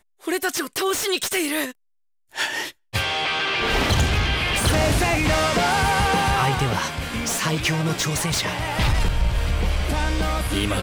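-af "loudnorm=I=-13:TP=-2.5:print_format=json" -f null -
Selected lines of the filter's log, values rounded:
"input_i" : "-22.1",
"input_tp" : "-10.1",
"input_lra" : "3.3",
"input_thresh" : "-32.2",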